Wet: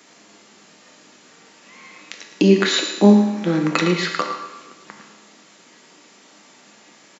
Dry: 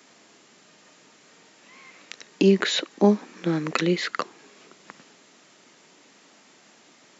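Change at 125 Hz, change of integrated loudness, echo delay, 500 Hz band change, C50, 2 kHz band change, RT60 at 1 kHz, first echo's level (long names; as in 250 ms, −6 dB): +6.0 dB, +6.0 dB, 111 ms, +4.0 dB, 5.0 dB, +5.5 dB, 1.1 s, −10.5 dB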